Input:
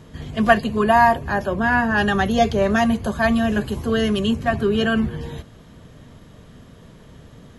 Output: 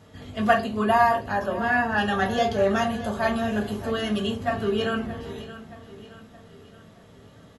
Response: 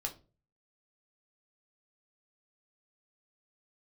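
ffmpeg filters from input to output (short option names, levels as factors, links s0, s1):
-filter_complex "[0:a]highpass=f=150:p=1,aecho=1:1:622|1244|1866|2488:0.178|0.0854|0.041|0.0197[s0];[1:a]atrim=start_sample=2205[s1];[s0][s1]afir=irnorm=-1:irlink=0,volume=0.631"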